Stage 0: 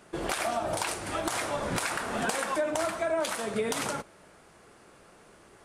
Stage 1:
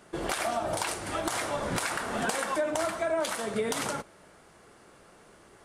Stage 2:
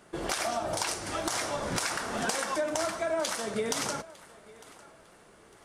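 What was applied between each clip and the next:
notch filter 2,500 Hz, Q 24
feedback echo with a high-pass in the loop 903 ms, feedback 31%, level −19 dB; dynamic equaliser 5,600 Hz, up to +8 dB, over −53 dBFS, Q 1.8; level −1.5 dB

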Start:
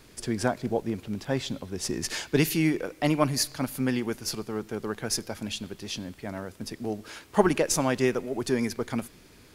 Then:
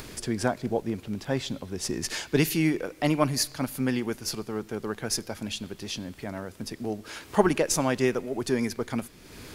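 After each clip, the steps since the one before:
upward compression, threshold −32 dBFS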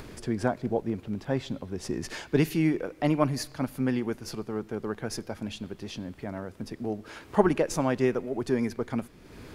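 high-shelf EQ 2,700 Hz −11.5 dB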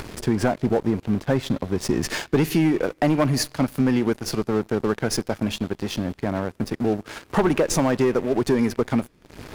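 leveller curve on the samples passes 3
downward compressor, threshold −16 dBFS, peak gain reduction 6.5 dB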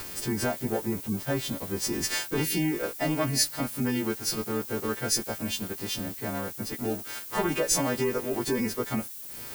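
every partial snapped to a pitch grid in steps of 2 semitones
gate on every frequency bin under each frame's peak −30 dB strong
background noise violet −34 dBFS
level −7 dB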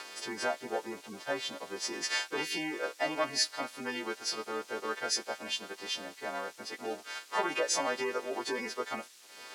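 band-pass filter 560–5,200 Hz

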